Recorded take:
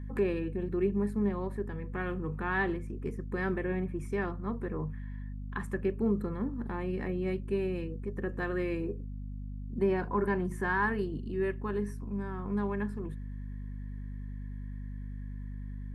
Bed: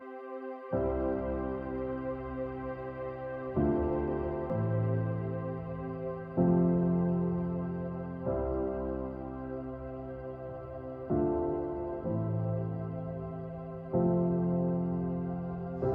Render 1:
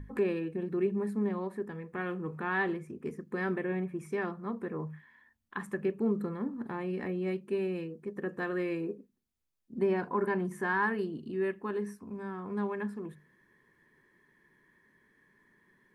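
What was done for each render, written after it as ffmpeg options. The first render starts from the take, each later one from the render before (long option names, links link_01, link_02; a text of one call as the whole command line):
ffmpeg -i in.wav -af "bandreject=frequency=50:width_type=h:width=6,bandreject=frequency=100:width_type=h:width=6,bandreject=frequency=150:width_type=h:width=6,bandreject=frequency=200:width_type=h:width=6,bandreject=frequency=250:width_type=h:width=6" out.wav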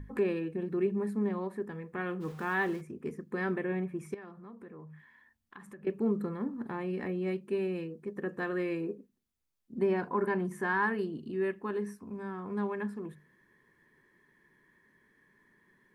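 ffmpeg -i in.wav -filter_complex "[0:a]asplit=3[link_01][link_02][link_03];[link_01]afade=type=out:start_time=2.2:duration=0.02[link_04];[link_02]aeval=exprs='val(0)*gte(abs(val(0)),0.00398)':channel_layout=same,afade=type=in:start_time=2.2:duration=0.02,afade=type=out:start_time=2.8:duration=0.02[link_05];[link_03]afade=type=in:start_time=2.8:duration=0.02[link_06];[link_04][link_05][link_06]amix=inputs=3:normalize=0,asettb=1/sr,asplit=3[link_07][link_08][link_09];[link_07]atrim=end=4.144[link_10];[link_08]atrim=start=4.14:end=5.87,asetpts=PTS-STARTPTS,afade=type=in:duration=0.004:curve=qsin,afade=type=out:start_time=1.726:duration=0.004:curve=qsin,acompressor=threshold=-49dB:ratio=3:attack=3.2:release=140:knee=1:detection=peak[link_11];[link_09]atrim=start=5.866[link_12];[link_10][link_11]acrossfade=duration=0.004:curve1=hsin:curve2=qsin[link_13];[link_13][link_12]acrossfade=duration=0.004:curve1=qsin:curve2=hsin" out.wav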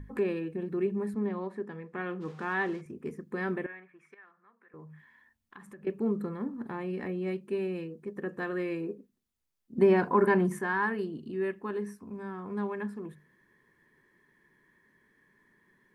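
ffmpeg -i in.wav -filter_complex "[0:a]asettb=1/sr,asplit=3[link_01][link_02][link_03];[link_01]atrim=end=1.144[link_04];[link_02]atrim=start=1.14:end=2.86,asetpts=PTS-STARTPTS,afade=type=in:duration=0.004:curve=qsin,afade=type=out:start_time=1.716:duration=0.004:curve=qsin,highpass=140,lowpass=6300[link_05];[link_03]atrim=start=2.856[link_06];[link_04][link_05]acrossfade=duration=0.004:curve1=hsin:curve2=qsin[link_07];[link_07][link_06]acrossfade=duration=0.004:curve1=qsin:curve2=hsin,asettb=1/sr,asplit=3[link_08][link_09][link_10];[link_08]atrim=end=3.664[link_11];[link_09]atrim=start=3.66:end=4.74,asetpts=PTS-STARTPTS,afade=type=in:duration=0.004:curve=qsin,afade=type=out:start_time=1.076:duration=0.004:curve=qsin,bandpass=frequency=1700:width_type=q:width=2.1[link_12];[link_10]atrim=start=4.736[link_13];[link_11][link_12]acrossfade=duration=0.004:curve1=hsin:curve2=qsin[link_14];[link_14][link_13]acrossfade=duration=0.004:curve1=qsin:curve2=hsin,asettb=1/sr,asplit=3[link_15][link_16][link_17];[link_15]atrim=end=9.784[link_18];[link_16]atrim=start=9.78:end=10.59,asetpts=PTS-STARTPTS,afade=type=in:duration=0.004:curve=qsin,afade=type=out:start_time=0.806:duration=0.004:curve=qsin,acontrast=74[link_19];[link_17]atrim=start=10.586[link_20];[link_18][link_19]acrossfade=duration=0.004:curve1=hsin:curve2=qsin[link_21];[link_21][link_20]acrossfade=duration=0.004:curve1=qsin:curve2=hsin" out.wav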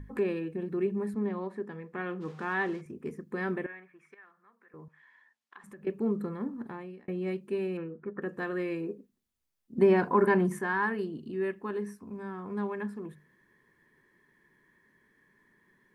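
ffmpeg -i in.wav -filter_complex "[0:a]asettb=1/sr,asplit=3[link_01][link_02][link_03];[link_01]atrim=end=4.884[link_04];[link_02]atrim=start=4.88:end=5.64,asetpts=PTS-STARTPTS,afade=type=in:duration=0.004:curve=qsin,afade=type=out:start_time=0.756:duration=0.004:curve=qsin,highpass=510,lowpass=7300[link_05];[link_03]atrim=start=5.636[link_06];[link_04][link_05]acrossfade=duration=0.004:curve1=hsin:curve2=qsin[link_07];[link_07][link_06]acrossfade=duration=0.004:curve1=qsin:curve2=hsin,asettb=1/sr,asplit=3[link_08][link_09][link_10];[link_08]atrim=end=7.774[link_11];[link_09]atrim=start=7.77:end=8.22,asetpts=PTS-STARTPTS,afade=type=in:duration=0.004:curve=qsin,afade=type=out:start_time=0.446:duration=0.004:curve=qsin,lowpass=frequency=1400:width_type=q:width=6.6[link_12];[link_10]atrim=start=8.216[link_13];[link_11][link_12]acrossfade=duration=0.004:curve1=hsin:curve2=qsin[link_14];[link_14][link_13]acrossfade=duration=0.004:curve1=qsin:curve2=hsin,asplit=2[link_15][link_16];[link_15]atrim=end=7.08,asetpts=PTS-STARTPTS,afade=type=out:start_time=6.56:duration=0.52[link_17];[link_16]atrim=start=7.08,asetpts=PTS-STARTPTS,afade=type=in:duration=0.004:curve=hsin[link_18];[link_17][link_18]concat=n=2:v=0:a=1" out.wav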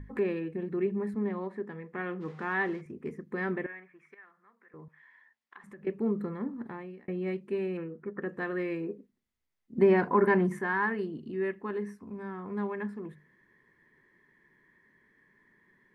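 ffmpeg -i in.wav -af "lowpass=frequency=3600:poles=1,equalizer=frequency=2000:width=6:gain=7" out.wav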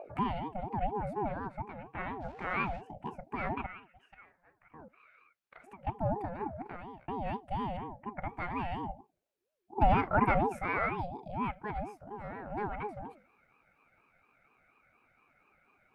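ffmpeg -i in.wav -af "aeval=exprs='val(0)*sin(2*PI*490*n/s+490*0.3/4.2*sin(2*PI*4.2*n/s))':channel_layout=same" out.wav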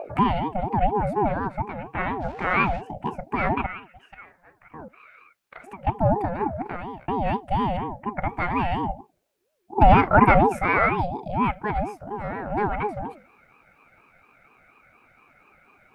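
ffmpeg -i in.wav -af "volume=11.5dB,alimiter=limit=-3dB:level=0:latency=1" out.wav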